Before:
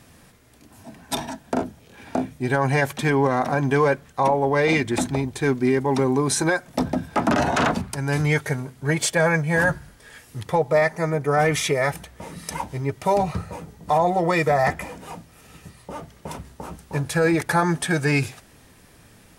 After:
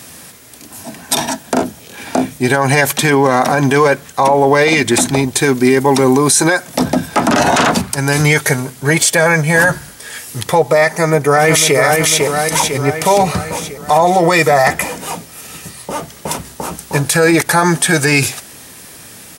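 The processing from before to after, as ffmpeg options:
-filter_complex "[0:a]asettb=1/sr,asplit=3[s0][s1][s2];[s0]atrim=end=5.394[s3];[s1]atrim=start=5.39:end=6.36,asetpts=PTS-STARTPTS,afade=t=in:d=0.004:c=qsin,afade=t=out:st=0.966:d=0.004:c=qsin,highshelf=f=11000:g=5.5[s4];[s2]atrim=start=6.356[s5];[s3][s4]acrossfade=d=0.004:c1=hsin:c2=qsin[s6];[s6][s5]acrossfade=d=0.004:c1=qsin:c2=hsin,asplit=2[s7][s8];[s8]afade=t=in:st=10.86:d=0.01,afade=t=out:st=11.77:d=0.01,aecho=0:1:500|1000|1500|2000|2500|3000|3500:0.562341|0.309288|0.170108|0.0935595|0.0514577|0.0283018|0.015566[s9];[s7][s9]amix=inputs=2:normalize=0,highpass=f=170:p=1,highshelf=f=4000:g=11,alimiter=level_in=4.73:limit=0.891:release=50:level=0:latency=1,volume=0.891"

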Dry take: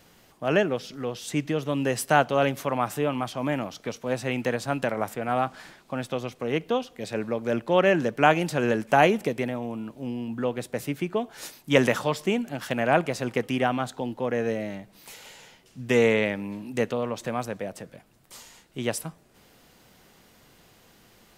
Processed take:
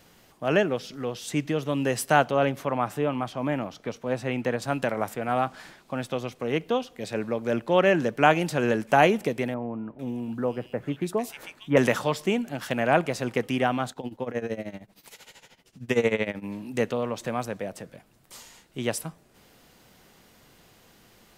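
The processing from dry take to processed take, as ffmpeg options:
-filter_complex "[0:a]asettb=1/sr,asplit=3[s0][s1][s2];[s0]atrim=end=2.314[s3];[s1]atrim=start=2.31:end=4.62,asetpts=PTS-STARTPTS,afade=t=in:d=0.004:c=qsin,afade=t=out:st=2.306:d=0.004:c=qsin,highshelf=f=3400:g=-8[s4];[s2]atrim=start=4.616[s5];[s3][s4]acrossfade=d=0.004:c1=hsin:c2=qsin[s6];[s6][s5]acrossfade=d=0.004:c1=qsin:c2=hsin,asettb=1/sr,asplit=3[s7][s8][s9];[s7]atrim=end=9.544[s10];[s8]atrim=start=9.54:end=11.77,asetpts=PTS-STARTPTS,afade=t=in:d=0.004:c=qsin,afade=t=out:st=2.226:d=0.004:c=qsin,acrossover=split=2000[s11][s12];[s12]adelay=450[s13];[s11][s13]amix=inputs=2:normalize=0,atrim=end_sample=98343[s14];[s9]atrim=start=11.766[s15];[s10][s14]acrossfade=d=0.004:c1=hsin:c2=qsin[s16];[s16][s15]acrossfade=d=0.004:c1=qsin:c2=hsin,asettb=1/sr,asplit=3[s17][s18][s19];[s17]atrim=end=13.914[s20];[s18]atrim=start=13.91:end=16.45,asetpts=PTS-STARTPTS,afade=t=in:d=0.004:c=qsin,afade=t=out:st=2.536:d=0.004:c=qsin,tremolo=f=13:d=0.85[s21];[s19]atrim=start=16.446[s22];[s20][s21]acrossfade=d=0.004:c1=hsin:c2=qsin[s23];[s23][s22]acrossfade=d=0.004:c1=qsin:c2=hsin"

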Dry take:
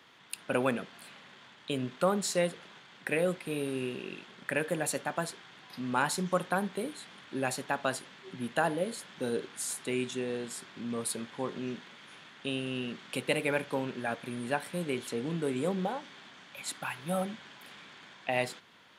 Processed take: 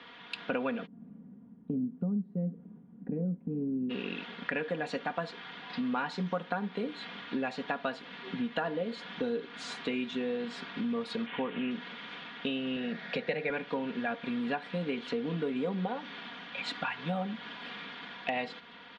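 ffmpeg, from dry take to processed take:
-filter_complex "[0:a]asplit=3[s0][s1][s2];[s0]afade=t=out:st=0.85:d=0.02[s3];[s1]lowpass=f=210:t=q:w=1.8,afade=t=in:st=0.85:d=0.02,afade=t=out:st=3.89:d=0.02[s4];[s2]afade=t=in:st=3.89:d=0.02[s5];[s3][s4][s5]amix=inputs=3:normalize=0,asettb=1/sr,asplit=3[s6][s7][s8];[s6]atrim=end=11.264[s9];[s7]atrim=start=11.26:end=11.71,asetpts=PTS-STARTPTS,afade=t=in:d=0.004:c=qsin,afade=t=out:st=0.446:d=0.004:c=qsin,highshelf=f=4000:t=q:w=3:g=-13[s10];[s8]atrim=start=11.706[s11];[s9][s10]acrossfade=d=0.004:c1=hsin:c2=qsin[s12];[s12][s11]acrossfade=d=0.004:c1=qsin:c2=hsin,asettb=1/sr,asplit=3[s13][s14][s15];[s13]atrim=end=12.764[s16];[s14]atrim=start=12.76:end=13.5,asetpts=PTS-STARTPTS,afade=t=in:d=0.004:c=qsin,afade=t=out:st=0.736:d=0.004:c=qsin,highpass=120,equalizer=f=160:t=q:w=4:g=5,equalizer=f=280:t=q:w=4:g=-8,equalizer=f=620:t=q:w=4:g=8,equalizer=f=1100:t=q:w=4:g=-8,equalizer=f=1800:t=q:w=4:g=7,equalizer=f=3000:t=q:w=4:g=-8,lowpass=f=6800:w=0.5412,lowpass=f=6800:w=1.3066[s17];[s15]atrim=start=13.496[s18];[s16][s17]acrossfade=d=0.004:c1=hsin:c2=qsin[s19];[s19][s18]acrossfade=d=0.004:c1=qsin:c2=hsin,lowpass=f=4000:w=0.5412,lowpass=f=4000:w=1.3066,aecho=1:1:4.2:0.7,acompressor=threshold=0.0126:ratio=4,volume=2.11"

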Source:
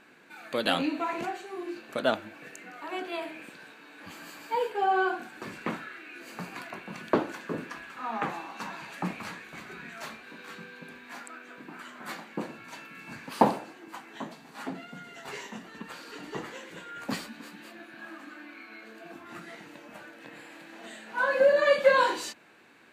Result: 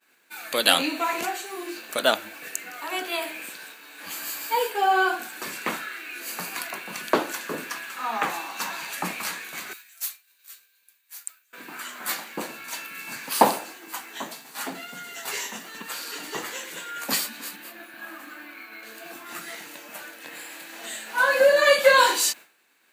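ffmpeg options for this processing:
-filter_complex "[0:a]asettb=1/sr,asplit=3[s0][s1][s2];[s0]atrim=end=9.734[s3];[s1]atrim=start=9.73:end=11.53,asetpts=PTS-STARTPTS,afade=t=in:d=0.004:c=qsin,afade=t=out:st=1.796:d=0.004:c=qsin,aderivative[s4];[s2]atrim=start=11.526[s5];[s3][s4]acrossfade=d=0.004:c1=hsin:c2=qsin[s6];[s6][s5]acrossfade=d=0.004:c1=qsin:c2=hsin,asettb=1/sr,asplit=3[s7][s8][s9];[s7]atrim=end=17.564[s10];[s8]atrim=start=17.56:end=18.83,asetpts=PTS-STARTPTS,afade=t=in:d=0.004:c=qsin,afade=t=out:st=1.266:d=0.004:c=qsin,equalizer=f=6100:w=0.49:g=-7[s11];[s9]atrim=start=18.826[s12];[s10][s11]acrossfade=d=0.004:c1=hsin:c2=qsin[s13];[s13][s12]acrossfade=d=0.004:c1=qsin:c2=hsin,agate=range=0.0224:threshold=0.00447:ratio=3:detection=peak,aemphasis=mode=production:type=riaa,volume=1.88"

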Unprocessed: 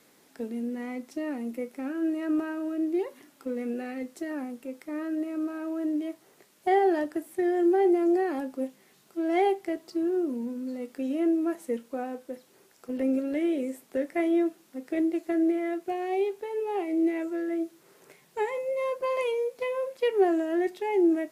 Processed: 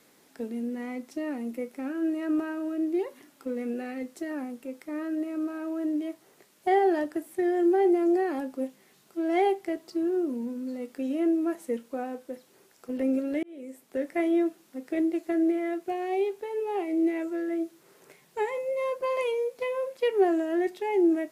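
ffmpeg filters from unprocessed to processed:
-filter_complex "[0:a]asplit=2[s0][s1];[s0]atrim=end=13.43,asetpts=PTS-STARTPTS,afade=t=out:st=13.426:d=0.004:c=hsin[s2];[s1]atrim=start=13.43,asetpts=PTS-STARTPTS,afade=t=in:d=0.65[s3];[s2][s3]concat=n=2:v=0:a=1"

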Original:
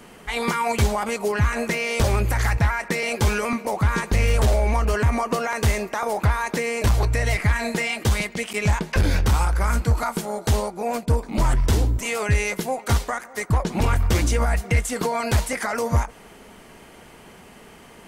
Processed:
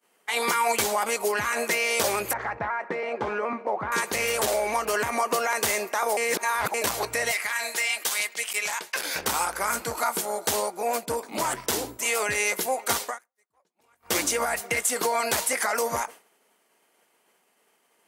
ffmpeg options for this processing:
-filter_complex "[0:a]asettb=1/sr,asplit=3[s0][s1][s2];[s0]atrim=end=2.334[s3];[s1]atrim=start=2.33:end=3.92,asetpts=PTS-STARTPTS,afade=t=in:d=0.004:c=qsin,afade=t=out:st=1.586:d=0.004:c=qsin,lowpass=1300[s4];[s2]atrim=start=3.916[s5];[s3][s4]acrossfade=d=0.004:c1=hsin:c2=qsin[s6];[s6][s5]acrossfade=d=0.004:c1=qsin:c2=hsin,asettb=1/sr,asplit=3[s7][s8][s9];[s7]atrim=end=7.314[s10];[s8]atrim=start=7.31:end=9.16,asetpts=PTS-STARTPTS,afade=t=in:d=0.004:c=qsin,afade=t=out:st=1.846:d=0.004:c=qsin,highpass=f=1300:p=1[s11];[s9]atrim=start=9.156[s12];[s10][s11]acrossfade=d=0.004:c1=hsin:c2=qsin[s13];[s13][s12]acrossfade=d=0.004:c1=qsin:c2=hsin,asplit=5[s14][s15][s16][s17][s18];[s14]atrim=end=6.172[s19];[s15]atrim=start=6.168:end=6.742,asetpts=PTS-STARTPTS,areverse[s20];[s16]atrim=start=6.738:end=13.19,asetpts=PTS-STARTPTS,afade=t=out:st=6.302:d=0.15:silence=0.0891251[s21];[s17]atrim=start=13.19:end=13.97,asetpts=PTS-STARTPTS,volume=0.0891[s22];[s18]atrim=start=13.97,asetpts=PTS-STARTPTS,afade=t=in:d=0.15:silence=0.0891251[s23];[s19][s20]acrossfade=d=0.004:c1=hsin:c2=hsin[s24];[s21][s22][s23]concat=n=3:v=0:a=1[s25];[s24][s25]acrossfade=d=0.004:c1=hsin:c2=hsin,highpass=400,agate=range=0.0224:threshold=0.0178:ratio=3:detection=peak,highshelf=f=8200:g=11"

